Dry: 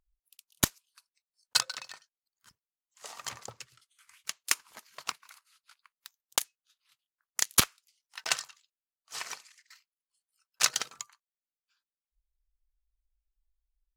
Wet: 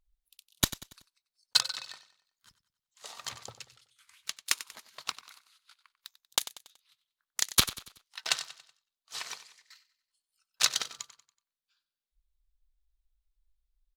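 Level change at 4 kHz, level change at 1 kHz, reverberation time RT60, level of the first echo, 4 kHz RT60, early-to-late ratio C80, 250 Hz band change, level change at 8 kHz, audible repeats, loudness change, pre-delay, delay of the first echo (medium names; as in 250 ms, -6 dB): +2.5 dB, -2.0 dB, no reverb, -15.0 dB, no reverb, no reverb, -1.5 dB, -1.5 dB, 3, 0.0 dB, no reverb, 94 ms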